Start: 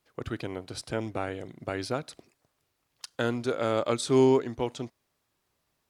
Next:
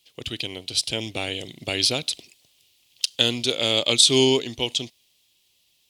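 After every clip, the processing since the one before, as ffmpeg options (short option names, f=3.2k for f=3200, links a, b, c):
-af "highshelf=f=2.1k:t=q:w=3:g=13.5,dynaudnorm=f=240:g=11:m=11.5dB,volume=-1dB"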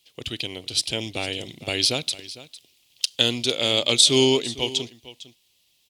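-af "aecho=1:1:454:0.141"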